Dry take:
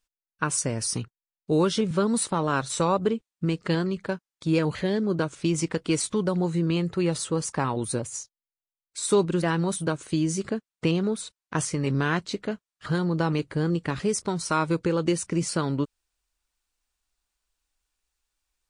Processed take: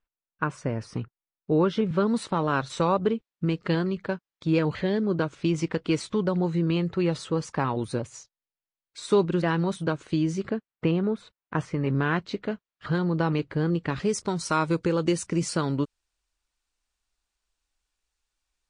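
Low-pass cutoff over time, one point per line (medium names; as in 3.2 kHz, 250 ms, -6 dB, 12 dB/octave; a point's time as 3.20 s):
1.58 s 2 kHz
2.23 s 4.1 kHz
10.22 s 4.1 kHz
10.89 s 2.2 kHz
11.85 s 2.2 kHz
12.39 s 3.8 kHz
13.81 s 3.8 kHz
14.27 s 8.5 kHz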